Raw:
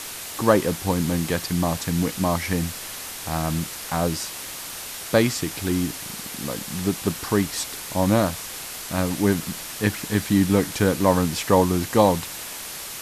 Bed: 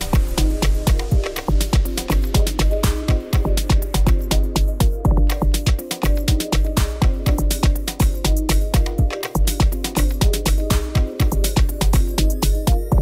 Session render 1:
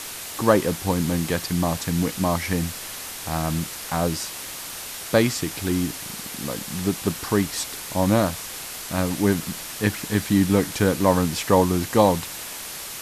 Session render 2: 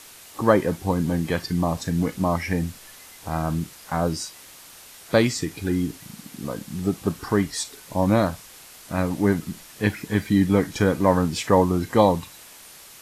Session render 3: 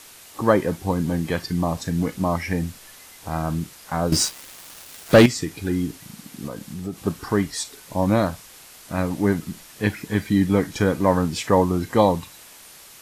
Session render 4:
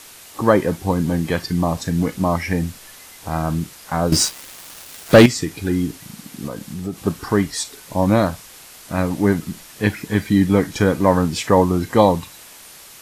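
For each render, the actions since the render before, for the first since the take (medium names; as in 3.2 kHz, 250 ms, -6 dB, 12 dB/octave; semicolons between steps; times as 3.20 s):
no audible change
noise print and reduce 11 dB
4.12–5.26 s: waveshaping leveller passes 3; 6.47–7.06 s: compression 2:1, threshold -30 dBFS
trim +3.5 dB; peak limiter -1 dBFS, peak gain reduction 1 dB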